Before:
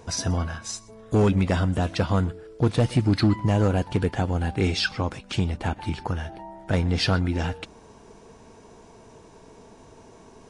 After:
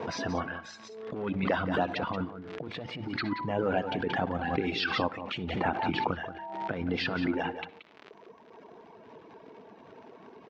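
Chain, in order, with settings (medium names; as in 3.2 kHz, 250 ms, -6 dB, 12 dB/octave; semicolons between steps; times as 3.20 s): reverb removal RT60 2 s; gate with hold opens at -45 dBFS; compressor with a negative ratio -25 dBFS, ratio -0.5; crackle 100 per s -40 dBFS; band-pass 220–3200 Hz; distance through air 150 m; delay 178 ms -11.5 dB; on a send at -21 dB: reverberation RT60 0.25 s, pre-delay 58 ms; on the sum: swell ahead of each attack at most 44 dB/s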